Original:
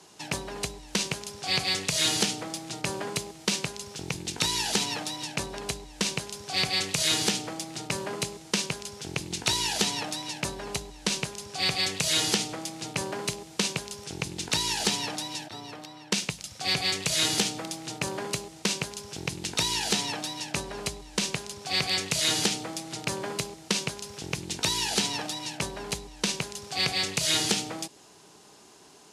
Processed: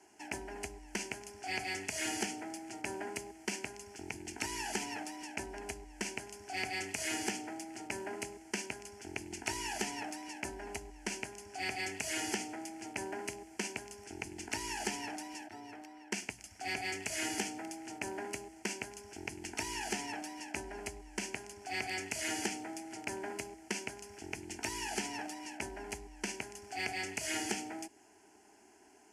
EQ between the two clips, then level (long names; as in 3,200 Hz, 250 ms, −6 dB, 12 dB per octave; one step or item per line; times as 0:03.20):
high-shelf EQ 9,400 Hz −9.5 dB
mains-hum notches 60/120 Hz
phaser with its sweep stopped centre 770 Hz, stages 8
−4.5 dB